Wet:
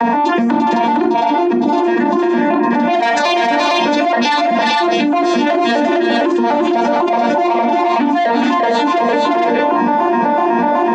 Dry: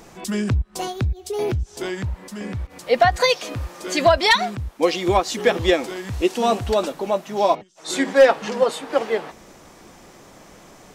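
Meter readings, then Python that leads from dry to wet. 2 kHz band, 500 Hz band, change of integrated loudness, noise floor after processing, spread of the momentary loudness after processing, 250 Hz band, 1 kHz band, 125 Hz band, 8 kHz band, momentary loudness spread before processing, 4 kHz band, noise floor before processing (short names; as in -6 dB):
+6.5 dB, +5.0 dB, +7.0 dB, -15 dBFS, 1 LU, +13.5 dB, +11.5 dB, n/a, -1.5 dB, 14 LU, +4.0 dB, -47 dBFS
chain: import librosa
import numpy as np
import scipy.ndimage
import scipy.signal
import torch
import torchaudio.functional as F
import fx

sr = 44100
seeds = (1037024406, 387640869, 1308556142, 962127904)

y = fx.vocoder_arp(x, sr, chord='major triad', root=58, every_ms=125)
y = fx.env_lowpass(y, sr, base_hz=2100.0, full_db=-16.0)
y = fx.dereverb_blind(y, sr, rt60_s=0.77)
y = fx.dynamic_eq(y, sr, hz=920.0, q=3.2, threshold_db=-35.0, ratio=4.0, max_db=-5)
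y = y + 0.5 * np.pad(y, (int(1.2 * sr / 1000.0), 0))[:len(y)]
y = fx.rider(y, sr, range_db=4, speed_s=0.5)
y = fx.small_body(y, sr, hz=(930.0, 1900.0, 3800.0), ring_ms=25, db=7)
y = 10.0 ** (-18.5 / 20.0) * np.tanh(y / 10.0 ** (-18.5 / 20.0))
y = fx.bandpass_edges(y, sr, low_hz=220.0, high_hz=6300.0)
y = fx.echo_multitap(y, sr, ms=(346, 417, 457), db=(-10.5, -11.0, -4.5))
y = fx.room_shoebox(y, sr, seeds[0], volume_m3=190.0, walls='furnished', distance_m=1.0)
y = fx.env_flatten(y, sr, amount_pct=100)
y = y * 10.0 ** (3.0 / 20.0)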